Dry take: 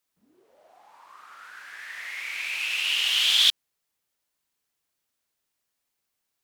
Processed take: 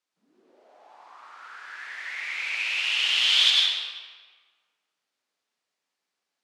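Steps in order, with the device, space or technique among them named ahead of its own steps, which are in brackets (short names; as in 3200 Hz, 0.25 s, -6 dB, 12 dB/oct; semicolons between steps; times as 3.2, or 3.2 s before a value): supermarket ceiling speaker (BPF 240–6200 Hz; reverb RT60 1.5 s, pre-delay 90 ms, DRR -2.5 dB); gain -2 dB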